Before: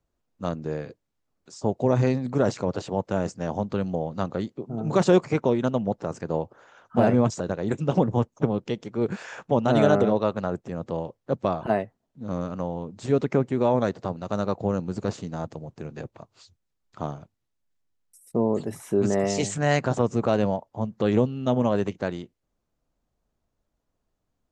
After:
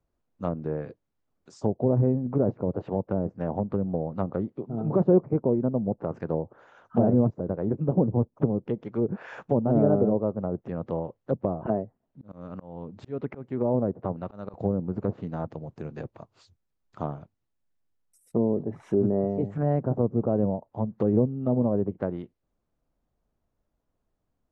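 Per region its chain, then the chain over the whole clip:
11.74–14.54 LPF 4100 Hz + auto swell 0.368 s
whole clip: treble ducked by the level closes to 560 Hz, closed at -22 dBFS; high shelf 2900 Hz -10 dB

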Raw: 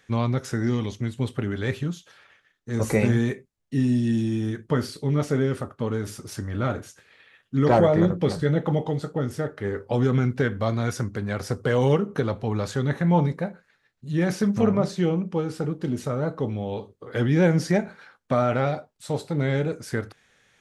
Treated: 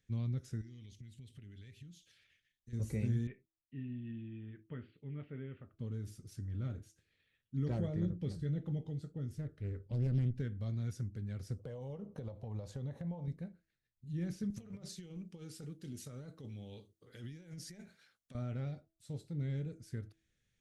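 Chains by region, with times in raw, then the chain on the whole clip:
0.61–2.73 resonant high shelf 1600 Hz +8 dB, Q 1.5 + compressor 5:1, threshold -37 dBFS
3.27–5.74 steep low-pass 2900 Hz 48 dB/oct + tilt +3 dB/oct
9.37–10.4 Butterworth band-stop 700 Hz, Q 6.8 + low shelf 82 Hz +11 dB + Doppler distortion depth 0.85 ms
11.59–13.28 band shelf 720 Hz +14.5 dB 1.3 oct + compressor 5:1, threshold -21 dBFS
14.5–18.35 tilt +3 dB/oct + negative-ratio compressor -31 dBFS
whole clip: passive tone stack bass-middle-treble 10-0-1; de-hum 325.8 Hz, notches 2; gain +1.5 dB

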